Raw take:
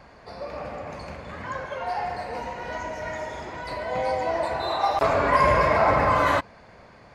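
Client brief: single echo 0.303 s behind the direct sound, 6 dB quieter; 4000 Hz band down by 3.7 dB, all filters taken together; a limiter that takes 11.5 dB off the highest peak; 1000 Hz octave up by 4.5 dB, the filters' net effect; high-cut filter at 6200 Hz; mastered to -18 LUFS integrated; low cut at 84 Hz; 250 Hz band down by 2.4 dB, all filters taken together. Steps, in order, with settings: HPF 84 Hz; LPF 6200 Hz; bell 250 Hz -3.5 dB; bell 1000 Hz +5.5 dB; bell 4000 Hz -4 dB; limiter -16.5 dBFS; echo 0.303 s -6 dB; gain +8.5 dB

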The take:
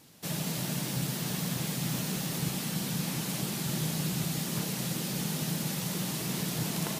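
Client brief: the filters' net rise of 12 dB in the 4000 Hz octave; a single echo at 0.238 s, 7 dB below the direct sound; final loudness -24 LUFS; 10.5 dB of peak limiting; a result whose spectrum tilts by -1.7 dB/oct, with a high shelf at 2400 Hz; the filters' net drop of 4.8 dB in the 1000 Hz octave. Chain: bell 1000 Hz -8.5 dB; high shelf 2400 Hz +8.5 dB; bell 4000 Hz +7.5 dB; limiter -21.5 dBFS; echo 0.238 s -7 dB; gain +4 dB

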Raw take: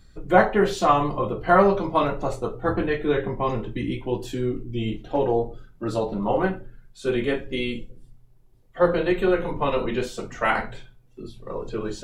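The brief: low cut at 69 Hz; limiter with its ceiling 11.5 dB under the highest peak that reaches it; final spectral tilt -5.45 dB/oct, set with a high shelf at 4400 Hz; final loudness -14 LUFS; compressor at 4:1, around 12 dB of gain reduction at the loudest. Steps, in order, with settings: HPF 69 Hz; high shelf 4400 Hz -5 dB; compressor 4:1, threshold -26 dBFS; gain +21.5 dB; limiter -4 dBFS

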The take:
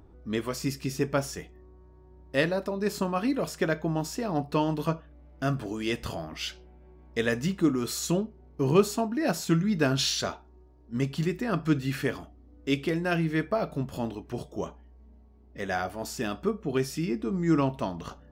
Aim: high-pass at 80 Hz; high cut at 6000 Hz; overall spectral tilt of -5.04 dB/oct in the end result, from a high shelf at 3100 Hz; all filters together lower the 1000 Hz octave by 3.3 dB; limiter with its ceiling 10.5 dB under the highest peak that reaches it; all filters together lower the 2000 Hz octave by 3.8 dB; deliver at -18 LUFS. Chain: HPF 80 Hz; LPF 6000 Hz; bell 1000 Hz -4 dB; bell 2000 Hz -6 dB; high shelf 3100 Hz +7 dB; gain +13.5 dB; limiter -6.5 dBFS

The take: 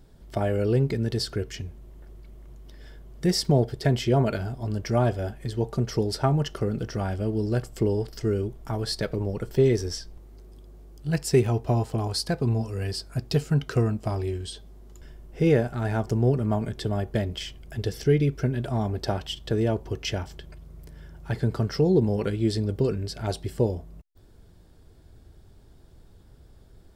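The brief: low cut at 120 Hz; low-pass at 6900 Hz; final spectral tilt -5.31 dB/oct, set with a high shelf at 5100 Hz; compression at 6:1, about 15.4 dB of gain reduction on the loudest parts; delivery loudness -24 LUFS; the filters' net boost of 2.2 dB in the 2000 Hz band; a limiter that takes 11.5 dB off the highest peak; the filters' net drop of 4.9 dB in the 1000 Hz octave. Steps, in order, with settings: HPF 120 Hz; LPF 6900 Hz; bell 1000 Hz -9 dB; bell 2000 Hz +7 dB; high shelf 5100 Hz -8 dB; compressor 6:1, threshold -33 dBFS; gain +17 dB; limiter -13.5 dBFS

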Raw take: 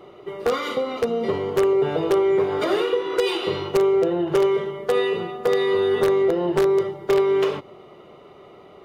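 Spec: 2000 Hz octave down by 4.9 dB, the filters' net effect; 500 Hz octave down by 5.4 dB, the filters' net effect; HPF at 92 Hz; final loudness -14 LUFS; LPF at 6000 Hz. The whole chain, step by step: HPF 92 Hz; LPF 6000 Hz; bell 500 Hz -7.5 dB; bell 2000 Hz -5.5 dB; gain +12.5 dB

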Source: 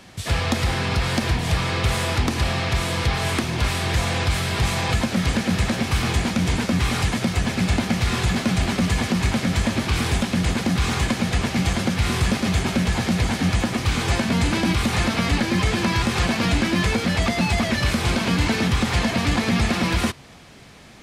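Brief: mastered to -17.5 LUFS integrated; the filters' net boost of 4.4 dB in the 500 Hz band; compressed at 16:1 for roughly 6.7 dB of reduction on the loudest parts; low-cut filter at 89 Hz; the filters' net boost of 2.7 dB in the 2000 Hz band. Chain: HPF 89 Hz; bell 500 Hz +5.5 dB; bell 2000 Hz +3 dB; compressor 16:1, threshold -22 dBFS; gain +8.5 dB

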